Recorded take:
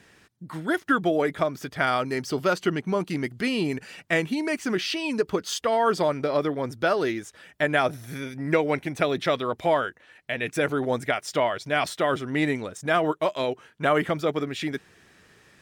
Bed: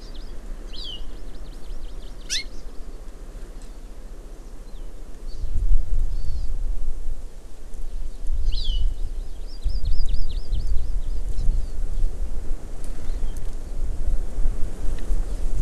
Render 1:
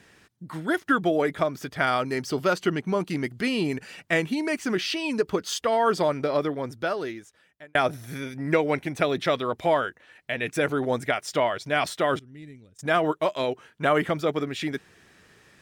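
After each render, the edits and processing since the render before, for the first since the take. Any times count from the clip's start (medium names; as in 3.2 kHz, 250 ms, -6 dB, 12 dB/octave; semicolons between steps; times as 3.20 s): 6.30–7.75 s: fade out linear; 12.19–12.79 s: amplifier tone stack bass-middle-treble 10-0-1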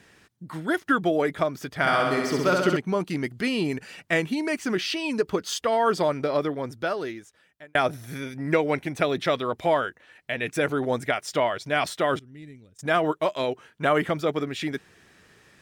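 1.74–2.77 s: flutter echo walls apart 11.3 m, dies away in 1.2 s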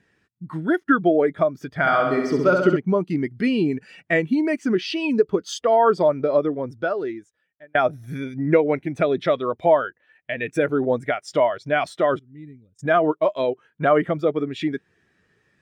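in parallel at +2.5 dB: compression, threshold -32 dBFS, peak gain reduction 14.5 dB; on the sum: spectral contrast expander 1.5:1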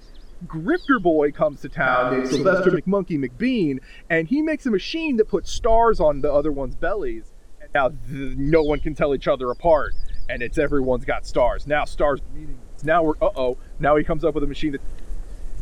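add bed -8 dB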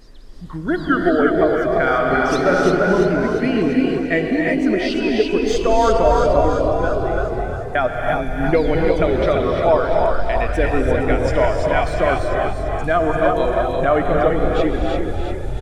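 frequency-shifting echo 345 ms, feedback 52%, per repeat +37 Hz, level -5 dB; gated-style reverb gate 350 ms rising, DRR 2 dB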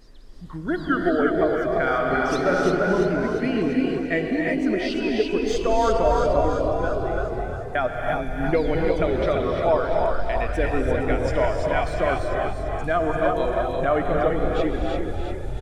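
trim -5 dB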